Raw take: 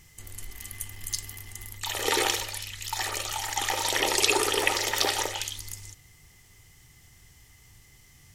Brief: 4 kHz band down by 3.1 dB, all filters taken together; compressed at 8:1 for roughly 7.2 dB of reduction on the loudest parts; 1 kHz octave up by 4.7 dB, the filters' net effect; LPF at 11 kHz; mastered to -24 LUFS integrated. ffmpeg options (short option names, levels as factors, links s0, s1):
-af "lowpass=11000,equalizer=f=1000:t=o:g=6,equalizer=f=4000:t=o:g=-4.5,acompressor=threshold=0.0501:ratio=8,volume=2.51"